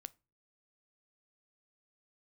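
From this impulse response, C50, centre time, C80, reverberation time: 25.0 dB, 1 ms, 32.0 dB, non-exponential decay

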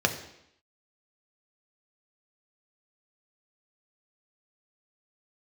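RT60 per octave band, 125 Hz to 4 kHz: 0.70, 0.80, 0.75, 0.80, 0.80, 0.80 seconds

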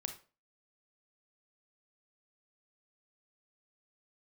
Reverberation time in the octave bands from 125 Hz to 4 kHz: 0.35, 0.40, 0.40, 0.35, 0.30, 0.30 seconds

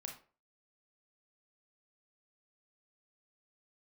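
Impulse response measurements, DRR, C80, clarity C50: 1.5 dB, 13.0 dB, 7.0 dB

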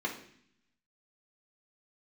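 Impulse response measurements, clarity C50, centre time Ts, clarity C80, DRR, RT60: 8.5 dB, 19 ms, 12.0 dB, −2.5 dB, 0.60 s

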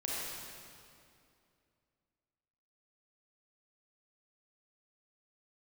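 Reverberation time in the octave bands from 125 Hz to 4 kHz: 2.8, 2.9, 2.6, 2.4, 2.2, 2.0 seconds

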